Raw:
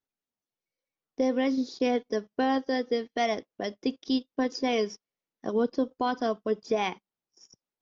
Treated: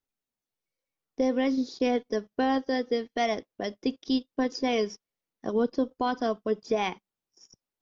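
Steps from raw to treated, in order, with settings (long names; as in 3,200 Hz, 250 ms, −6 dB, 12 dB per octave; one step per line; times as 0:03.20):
low-shelf EQ 60 Hz +10.5 dB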